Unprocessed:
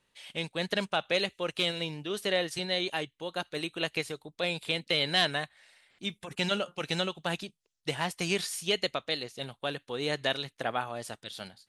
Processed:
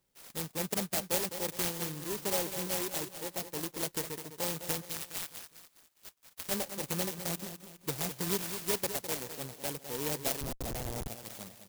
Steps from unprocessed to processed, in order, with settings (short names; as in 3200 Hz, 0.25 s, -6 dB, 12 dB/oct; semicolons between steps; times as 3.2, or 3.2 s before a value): FFT order left unsorted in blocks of 32 samples; 4.82–6.49 band-pass 6000 Hz, Q 4.1; on a send: feedback echo 0.206 s, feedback 42%, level -10 dB; 10.41–11.08 on the sum: Schmitt trigger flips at -33 dBFS; clock jitter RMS 0.13 ms; gain -2 dB